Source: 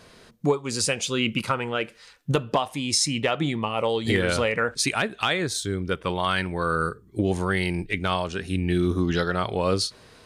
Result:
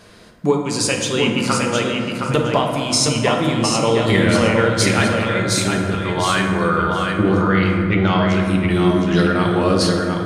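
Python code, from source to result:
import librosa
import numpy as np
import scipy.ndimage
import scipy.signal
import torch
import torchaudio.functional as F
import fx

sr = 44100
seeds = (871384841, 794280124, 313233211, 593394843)

y = fx.over_compress(x, sr, threshold_db=-27.0, ratio=-0.5, at=(5.14, 6.1))
y = fx.moving_average(y, sr, points=5, at=(6.68, 8.28))
y = fx.echo_feedback(y, sr, ms=714, feedback_pct=17, wet_db=-5.0)
y = fx.rev_fdn(y, sr, rt60_s=2.3, lf_ratio=1.55, hf_ratio=0.4, size_ms=29.0, drr_db=1.0)
y = F.gain(torch.from_numpy(y), 3.5).numpy()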